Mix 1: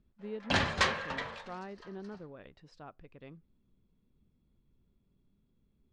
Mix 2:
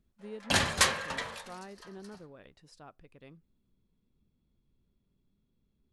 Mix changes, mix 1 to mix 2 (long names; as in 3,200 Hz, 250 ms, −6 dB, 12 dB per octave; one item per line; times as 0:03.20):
speech −3.0 dB
master: remove high-frequency loss of the air 160 metres